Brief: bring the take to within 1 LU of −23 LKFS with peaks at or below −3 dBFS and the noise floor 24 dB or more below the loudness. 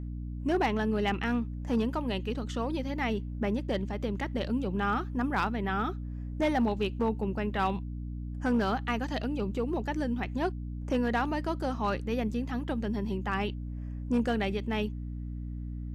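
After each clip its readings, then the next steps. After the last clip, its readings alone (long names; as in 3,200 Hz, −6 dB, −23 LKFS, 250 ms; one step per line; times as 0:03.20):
share of clipped samples 0.4%; peaks flattened at −20.5 dBFS; mains hum 60 Hz; hum harmonics up to 300 Hz; level of the hum −35 dBFS; integrated loudness −31.5 LKFS; sample peak −20.5 dBFS; target loudness −23.0 LKFS
→ clipped peaks rebuilt −20.5 dBFS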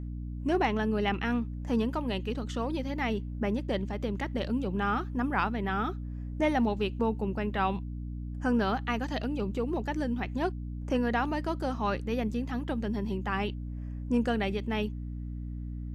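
share of clipped samples 0.0%; mains hum 60 Hz; hum harmonics up to 300 Hz; level of the hum −34 dBFS
→ hum removal 60 Hz, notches 5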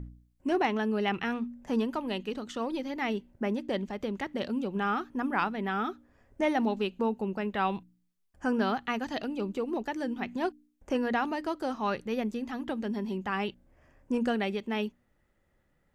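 mains hum none found; integrated loudness −32.0 LKFS; sample peak −15.0 dBFS; target loudness −23.0 LKFS
→ level +9 dB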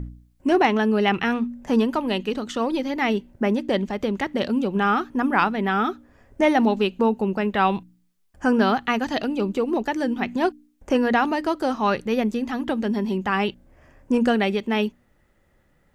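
integrated loudness −23.0 LKFS; sample peak −6.0 dBFS; background noise floor −63 dBFS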